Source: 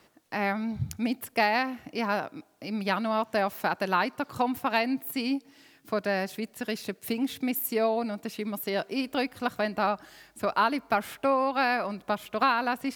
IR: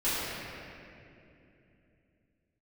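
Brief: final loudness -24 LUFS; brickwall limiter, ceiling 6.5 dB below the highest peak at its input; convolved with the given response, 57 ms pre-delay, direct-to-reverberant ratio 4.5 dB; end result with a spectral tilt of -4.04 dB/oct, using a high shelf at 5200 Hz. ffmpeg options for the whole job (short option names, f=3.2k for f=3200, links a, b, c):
-filter_complex "[0:a]highshelf=f=5.2k:g=-9,alimiter=limit=-18dB:level=0:latency=1,asplit=2[a][b];[1:a]atrim=start_sample=2205,adelay=57[c];[b][c]afir=irnorm=-1:irlink=0,volume=-16dB[d];[a][d]amix=inputs=2:normalize=0,volume=5.5dB"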